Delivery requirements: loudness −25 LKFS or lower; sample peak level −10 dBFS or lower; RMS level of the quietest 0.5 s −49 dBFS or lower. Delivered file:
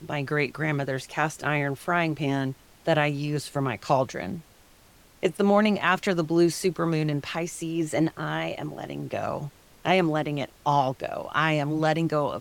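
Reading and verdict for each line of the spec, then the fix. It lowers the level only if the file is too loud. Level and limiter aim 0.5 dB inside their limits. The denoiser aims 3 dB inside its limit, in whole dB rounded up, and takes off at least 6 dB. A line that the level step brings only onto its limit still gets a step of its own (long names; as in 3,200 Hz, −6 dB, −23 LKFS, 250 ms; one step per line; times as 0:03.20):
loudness −26.5 LKFS: in spec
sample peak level −7.0 dBFS: out of spec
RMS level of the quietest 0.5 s −55 dBFS: in spec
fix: brickwall limiter −10.5 dBFS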